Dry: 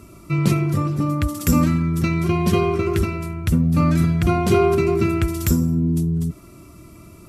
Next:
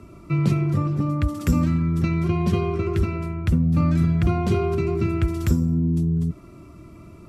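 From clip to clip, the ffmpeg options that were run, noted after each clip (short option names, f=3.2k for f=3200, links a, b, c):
-filter_complex "[0:a]aemphasis=mode=reproduction:type=75kf,acrossover=split=170|3000[a][b][c];[b]acompressor=threshold=-26dB:ratio=2.5[d];[a][d][c]amix=inputs=3:normalize=0"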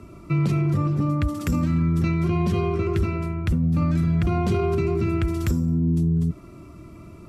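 -af "alimiter=limit=-15.5dB:level=0:latency=1:release=18,volume=1dB"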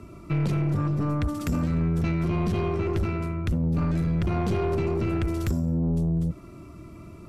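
-af "aeval=exprs='(tanh(10*val(0)+0.3)-tanh(0.3))/10':c=same"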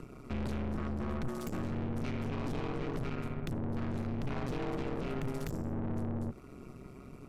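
-af "acompressor=mode=upward:threshold=-41dB:ratio=2.5,aeval=exprs='val(0)*sin(2*PI*66*n/s)':c=same,aeval=exprs='(tanh(44.7*val(0)+0.6)-tanh(0.6))/44.7':c=same"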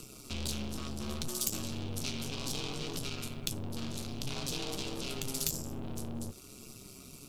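-af "aexciter=amount=10.2:drive=6.7:freq=2.9k,flanger=delay=9:depth=6.2:regen=59:speed=0.6:shape=sinusoidal"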